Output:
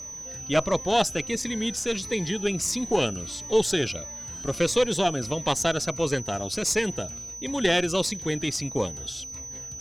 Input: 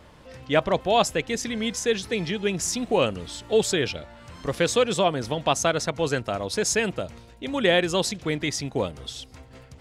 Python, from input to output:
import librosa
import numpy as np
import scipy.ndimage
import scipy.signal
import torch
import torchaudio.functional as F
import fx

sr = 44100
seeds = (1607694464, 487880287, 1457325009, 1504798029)

y = x + 10.0 ** (-36.0 / 20.0) * np.sin(2.0 * np.pi * 6000.0 * np.arange(len(x)) / sr)
y = fx.cheby_harmonics(y, sr, harmonics=(4,), levels_db=(-19,), full_scale_db=-5.5)
y = fx.notch_cascade(y, sr, direction='falling', hz=1.5)